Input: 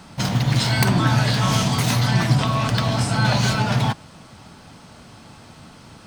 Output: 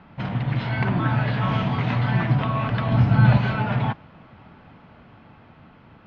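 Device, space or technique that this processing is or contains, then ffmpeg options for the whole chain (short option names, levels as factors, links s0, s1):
action camera in a waterproof case: -filter_complex "[0:a]asettb=1/sr,asplit=3[s0][s1][s2];[s0]atrim=end=2.914[s3];[s1]atrim=start=2.91:end=3.38,asetpts=PTS-STARTPTS,afade=t=in:d=0.004:c=qsin,afade=t=out:st=0.466:d=0.004:c=qsin,bass=f=250:g=9,treble=f=4000:g=3[s4];[s2]atrim=start=3.376[s5];[s3][s4]acrossfade=d=0.004:c1=hsin:c2=qsin[s6];[s6][s5]acrossfade=d=0.004:c1=qsin:c2=hsin,lowpass=f=2700:w=0.5412,lowpass=f=2700:w=1.3066,dynaudnorm=f=220:g=13:m=3.76,volume=0.562" -ar 16000 -c:a aac -b:a 64k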